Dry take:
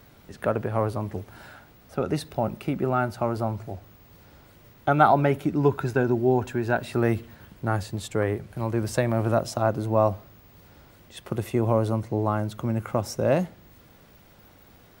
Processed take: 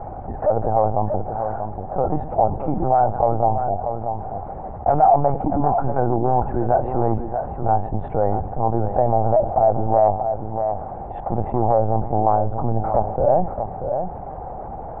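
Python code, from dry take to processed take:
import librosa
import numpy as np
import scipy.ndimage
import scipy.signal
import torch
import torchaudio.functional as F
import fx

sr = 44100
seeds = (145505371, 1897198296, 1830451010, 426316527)

p1 = fx.fold_sine(x, sr, drive_db=12, ceiling_db=-4.0)
p2 = x + (p1 * librosa.db_to_amplitude(-6.5))
p3 = fx.notch_comb(p2, sr, f0_hz=410.0)
p4 = fx.lpc_vocoder(p3, sr, seeds[0], excitation='pitch_kept', order=10)
p5 = fx.ladder_lowpass(p4, sr, hz=830.0, resonance_pct=80)
p6 = fx.peak_eq(p5, sr, hz=280.0, db=-5.0, octaves=0.88)
p7 = p6 + fx.echo_single(p6, sr, ms=636, db=-14.0, dry=0)
y = fx.env_flatten(p7, sr, amount_pct=50)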